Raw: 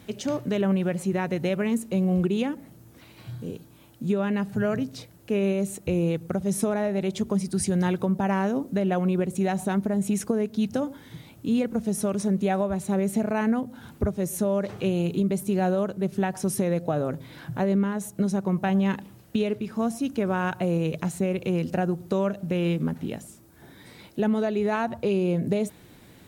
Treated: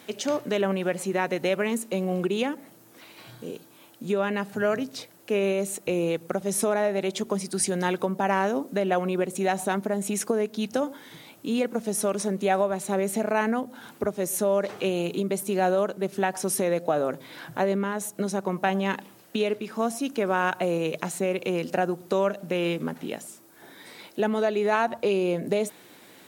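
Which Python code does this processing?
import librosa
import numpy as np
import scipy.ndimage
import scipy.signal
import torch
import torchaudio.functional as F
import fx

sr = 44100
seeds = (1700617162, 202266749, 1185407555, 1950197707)

y = scipy.signal.sosfilt(scipy.signal.bessel(2, 410.0, 'highpass', norm='mag', fs=sr, output='sos'), x)
y = F.gain(torch.from_numpy(y), 4.5).numpy()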